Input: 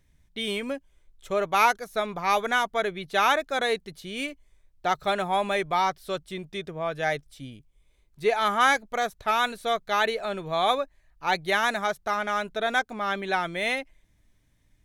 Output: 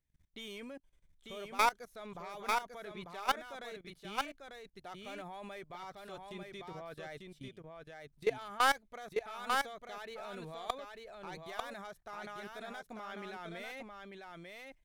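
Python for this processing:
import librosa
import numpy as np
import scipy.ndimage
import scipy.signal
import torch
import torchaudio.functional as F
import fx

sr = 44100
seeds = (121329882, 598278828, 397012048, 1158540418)

p1 = fx.tracing_dist(x, sr, depth_ms=0.072)
p2 = fx.level_steps(p1, sr, step_db=20)
p3 = p2 + fx.echo_single(p2, sr, ms=895, db=-4.0, dry=0)
y = p3 * 10.0 ** (-6.0 / 20.0)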